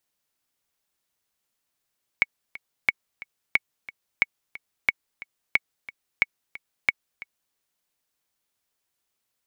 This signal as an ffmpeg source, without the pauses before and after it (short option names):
-f lavfi -i "aevalsrc='pow(10,(-5-19*gte(mod(t,2*60/180),60/180))/20)*sin(2*PI*2220*mod(t,60/180))*exp(-6.91*mod(t,60/180)/0.03)':d=5.33:s=44100"